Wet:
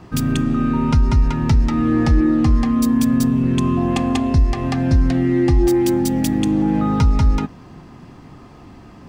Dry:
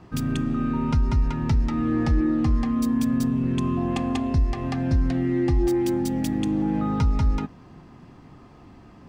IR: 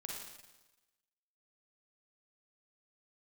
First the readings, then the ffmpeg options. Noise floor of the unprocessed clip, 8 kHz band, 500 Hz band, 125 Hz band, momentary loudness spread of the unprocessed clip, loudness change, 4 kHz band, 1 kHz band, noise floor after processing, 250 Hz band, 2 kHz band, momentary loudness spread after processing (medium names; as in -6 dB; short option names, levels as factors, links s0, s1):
-48 dBFS, +9.5 dB, +6.5 dB, +6.5 dB, 3 LU, +6.5 dB, +8.0 dB, +6.5 dB, -42 dBFS, +6.5 dB, +7.0 dB, 3 LU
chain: -af "highshelf=f=5200:g=4.5,volume=2.11"